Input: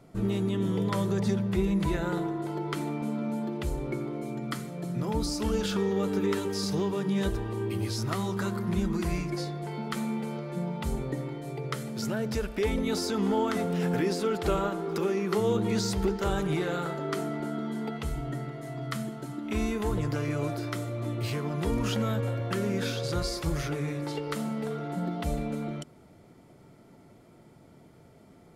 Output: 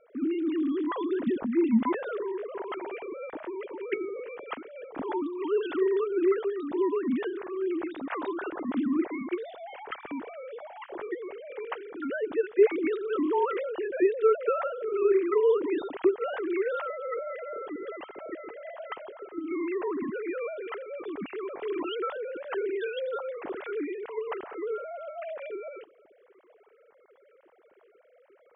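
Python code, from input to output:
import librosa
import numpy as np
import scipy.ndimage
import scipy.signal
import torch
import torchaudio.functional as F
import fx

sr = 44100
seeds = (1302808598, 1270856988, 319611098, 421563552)

y = fx.sine_speech(x, sr)
y = fx.air_absorb(y, sr, metres=130.0)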